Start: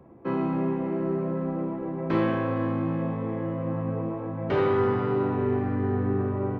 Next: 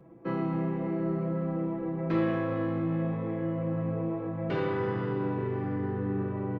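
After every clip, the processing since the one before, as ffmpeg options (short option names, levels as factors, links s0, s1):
-filter_complex "[0:a]equalizer=f=900:t=o:w=0.83:g=-4.5,aecho=1:1:6.1:0.68,asplit=2[s0][s1];[s1]alimiter=limit=0.1:level=0:latency=1,volume=0.708[s2];[s0][s2]amix=inputs=2:normalize=0,volume=0.398"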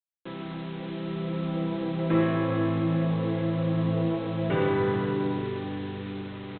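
-af "dynaudnorm=f=220:g=13:m=3.98,aresample=8000,acrusher=bits=5:mix=0:aa=0.000001,aresample=44100,aecho=1:1:102:0.355,volume=0.422"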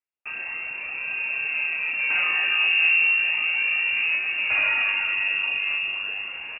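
-af "asoftclip=type=hard:threshold=0.0794,aphaser=in_gain=1:out_gain=1:delay=2.9:decay=0.37:speed=0.35:type=triangular,lowpass=f=2500:t=q:w=0.5098,lowpass=f=2500:t=q:w=0.6013,lowpass=f=2500:t=q:w=0.9,lowpass=f=2500:t=q:w=2.563,afreqshift=-2900,volume=1.5"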